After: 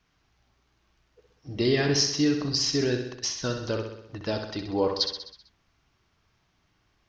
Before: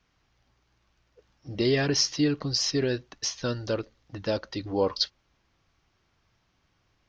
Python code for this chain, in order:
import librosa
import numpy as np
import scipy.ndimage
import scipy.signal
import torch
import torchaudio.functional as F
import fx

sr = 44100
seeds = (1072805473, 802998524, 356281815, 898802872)

y = fx.notch(x, sr, hz=530.0, q=12.0)
y = fx.echo_feedback(y, sr, ms=64, feedback_pct=58, wet_db=-7.0)